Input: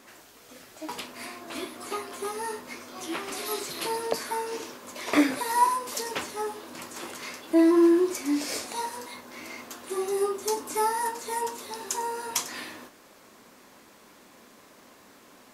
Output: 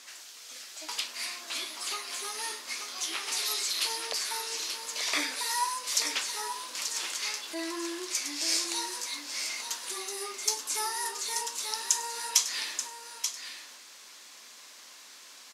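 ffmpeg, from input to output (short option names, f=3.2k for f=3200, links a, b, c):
-filter_complex "[0:a]asplit=2[a][b];[b]acompressor=threshold=-35dB:ratio=6,volume=1.5dB[c];[a][c]amix=inputs=2:normalize=0,bandpass=f=5.3k:t=q:w=1:csg=0,aecho=1:1:883:0.398,volume=4dB"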